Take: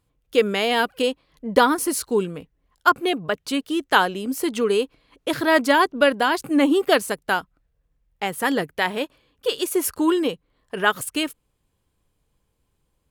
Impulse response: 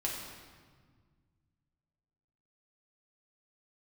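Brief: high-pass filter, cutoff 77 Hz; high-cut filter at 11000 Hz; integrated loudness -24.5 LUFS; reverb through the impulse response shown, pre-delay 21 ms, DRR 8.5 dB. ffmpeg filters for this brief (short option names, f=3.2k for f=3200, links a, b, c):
-filter_complex "[0:a]highpass=77,lowpass=11k,asplit=2[a][b];[1:a]atrim=start_sample=2205,adelay=21[c];[b][c]afir=irnorm=-1:irlink=0,volume=-12.5dB[d];[a][d]amix=inputs=2:normalize=0,volume=-3dB"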